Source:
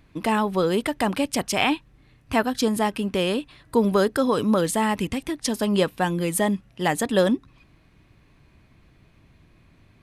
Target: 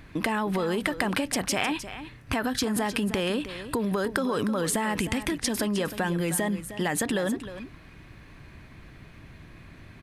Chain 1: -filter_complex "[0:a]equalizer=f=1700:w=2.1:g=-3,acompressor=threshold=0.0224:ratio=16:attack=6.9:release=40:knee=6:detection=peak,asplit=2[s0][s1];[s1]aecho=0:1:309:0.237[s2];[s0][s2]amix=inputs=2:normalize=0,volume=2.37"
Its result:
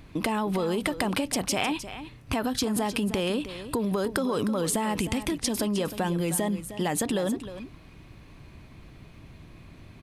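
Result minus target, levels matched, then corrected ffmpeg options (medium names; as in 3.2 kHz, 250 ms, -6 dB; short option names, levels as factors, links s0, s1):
2 kHz band -4.0 dB
-filter_complex "[0:a]equalizer=f=1700:w=2.1:g=5.5,acompressor=threshold=0.0224:ratio=16:attack=6.9:release=40:knee=6:detection=peak,asplit=2[s0][s1];[s1]aecho=0:1:309:0.237[s2];[s0][s2]amix=inputs=2:normalize=0,volume=2.37"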